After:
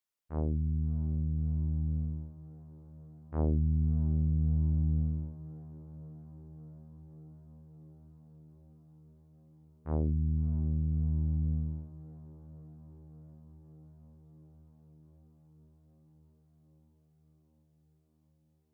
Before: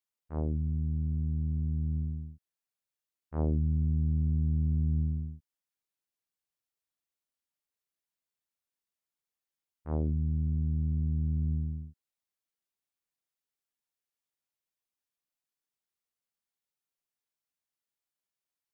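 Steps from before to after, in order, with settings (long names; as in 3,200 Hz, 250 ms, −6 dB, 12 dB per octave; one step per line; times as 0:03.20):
feedback delay with all-pass diffusion 653 ms, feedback 79%, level −16 dB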